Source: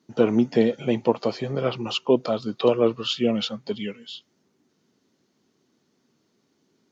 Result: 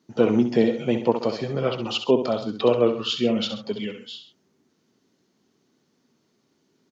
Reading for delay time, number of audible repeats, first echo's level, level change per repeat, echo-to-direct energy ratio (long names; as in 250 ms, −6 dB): 66 ms, 2, −9.0 dB, −7.0 dB, −8.0 dB